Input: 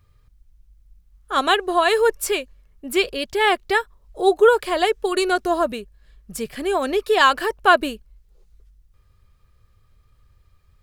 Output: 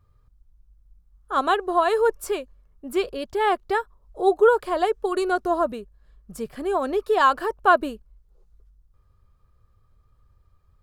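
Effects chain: resonant high shelf 1.6 kHz -7 dB, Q 1.5; trim -3 dB

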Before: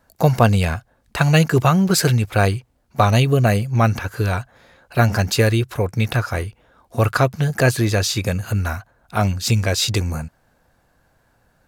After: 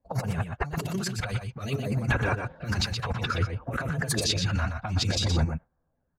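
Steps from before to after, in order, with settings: coarse spectral quantiser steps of 15 dB; level-controlled noise filter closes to 1.1 kHz, open at -11.5 dBFS; chorus voices 4, 0.56 Hz, delay 15 ms, depth 3.4 ms; compressor with a negative ratio -31 dBFS, ratio -1; LFO notch sine 0.31 Hz 330–4900 Hz; gate with hold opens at -44 dBFS; time stretch by phase-locked vocoder 0.53×; on a send: delay 122 ms -6.5 dB; on the sum: trim +2.5 dB

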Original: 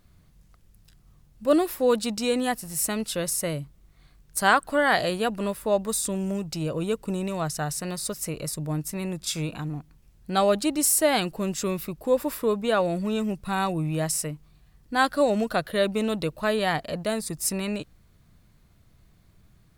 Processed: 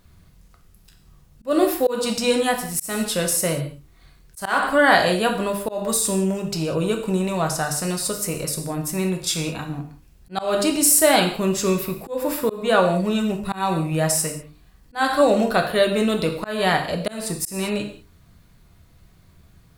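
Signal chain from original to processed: hum notches 50/100/150/200/250/300/350/400/450 Hz; gated-style reverb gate 220 ms falling, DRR 3 dB; slow attack 217 ms; trim +5 dB

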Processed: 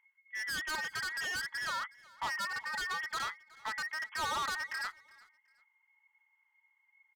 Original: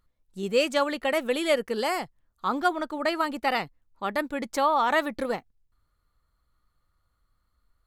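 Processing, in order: every band turned upside down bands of 2 kHz; FFT band-pass 760–3100 Hz; hard clipper -30.5 dBFS, distortion -5 dB; tape speed +10%; peaking EQ 1.6 kHz -6 dB 0.66 oct; feedback delay 369 ms, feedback 27%, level -23 dB

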